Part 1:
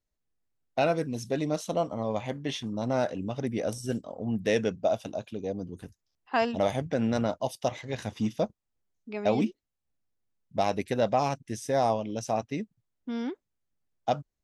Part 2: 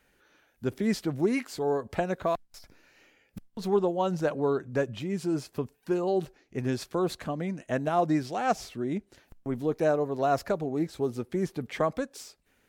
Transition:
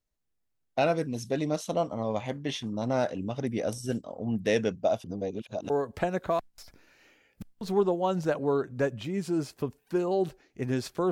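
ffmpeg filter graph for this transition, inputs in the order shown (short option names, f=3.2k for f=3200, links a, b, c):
-filter_complex "[0:a]apad=whole_dur=11.11,atrim=end=11.11,asplit=2[a][b];[a]atrim=end=5.042[c];[b]atrim=start=5.038:end=5.702,asetpts=PTS-STARTPTS,areverse[d];[1:a]atrim=start=1.658:end=7.07[e];[c][d]acrossfade=d=0.004:c1=hsin:c2=hsin[f];[f][e]acrossfade=d=0.004:c1=hsin:c2=hsin"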